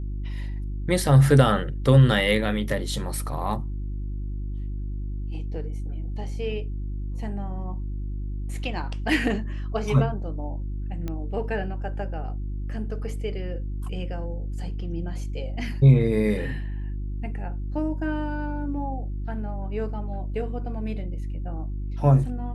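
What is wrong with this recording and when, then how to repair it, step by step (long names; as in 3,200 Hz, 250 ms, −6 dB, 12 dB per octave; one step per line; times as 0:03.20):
mains hum 50 Hz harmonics 7 −30 dBFS
0:11.08: click −19 dBFS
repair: click removal
hum removal 50 Hz, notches 7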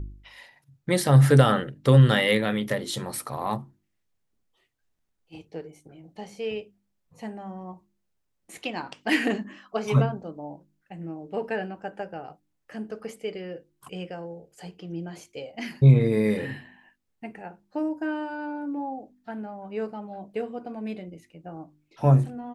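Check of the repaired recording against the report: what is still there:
0:11.08: click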